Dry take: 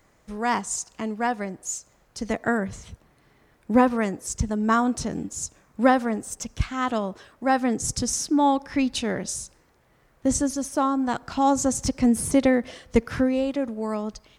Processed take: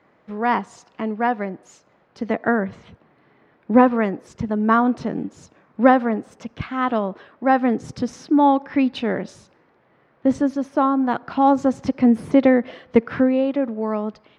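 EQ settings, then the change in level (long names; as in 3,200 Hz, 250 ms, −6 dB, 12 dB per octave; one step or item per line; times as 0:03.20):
high-pass filter 180 Hz 12 dB per octave
high-frequency loss of the air 360 metres
+6.0 dB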